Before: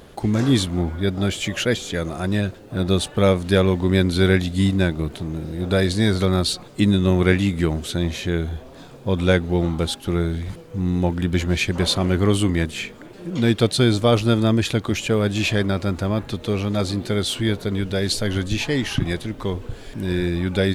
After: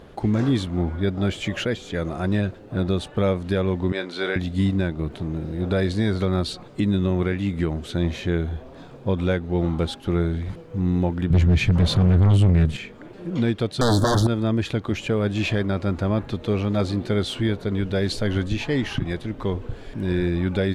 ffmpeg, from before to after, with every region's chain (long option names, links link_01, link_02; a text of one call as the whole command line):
ffmpeg -i in.wav -filter_complex "[0:a]asettb=1/sr,asplit=3[link_01][link_02][link_03];[link_01]atrim=end=3.924[link_04];[link_02]atrim=start=3.92:end=4.36,asetpts=PTS-STARTPTS,afade=type=in:duration=0.004:curve=qsin,afade=type=out:start_time=0.436:duration=0.004:curve=qsin,highpass=520,lowpass=7600,asplit=2[link_05][link_06];[link_06]adelay=28,volume=-10.5dB[link_07];[link_05][link_07]amix=inputs=2:normalize=0,atrim=end_sample=19404[link_08];[link_03]atrim=start=4.356[link_09];[link_04][link_08]acrossfade=duration=0.004:curve1=hsin:curve2=qsin[link_10];[link_10][link_09]acrossfade=duration=0.004:curve1=qsin:curve2=hsin,asettb=1/sr,asplit=3[link_11][link_12][link_13];[link_11]atrim=end=11.304[link_14];[link_12]atrim=start=11.3:end=12.77,asetpts=PTS-STARTPTS,afade=type=in:duration=0.004:curve=qsin,afade=type=out:start_time=1.466:duration=0.004:curve=qsin,lowshelf=frequency=210:width_type=q:width=1.5:gain=9.5,acontrast=87,asoftclip=type=hard:threshold=-5dB[link_15];[link_13]atrim=start=12.766[link_16];[link_14][link_15]acrossfade=duration=0.004:curve1=hsin:curve2=qsin[link_17];[link_17][link_16]acrossfade=duration=0.004:curve1=qsin:curve2=hsin,asettb=1/sr,asplit=3[link_18][link_19][link_20];[link_18]atrim=end=13.814[link_21];[link_19]atrim=start=13.81:end=14.27,asetpts=PTS-STARTPTS,afade=type=in:duration=0.004:curve=qsin,afade=type=out:start_time=0.456:duration=0.004:curve=qsin,aeval=exprs='0.531*sin(PI/2*3.98*val(0)/0.531)':channel_layout=same,asuperstop=centerf=2400:order=8:qfactor=1.4,highshelf=frequency=6600:gain=11[link_22];[link_20]atrim=start=14.266[link_23];[link_21][link_22]acrossfade=duration=0.004:curve1=hsin:curve2=qsin[link_24];[link_24][link_23]acrossfade=duration=0.004:curve1=qsin:curve2=hsin,lowpass=frequency=2300:poles=1,alimiter=limit=-12.5dB:level=0:latency=1:release=405" out.wav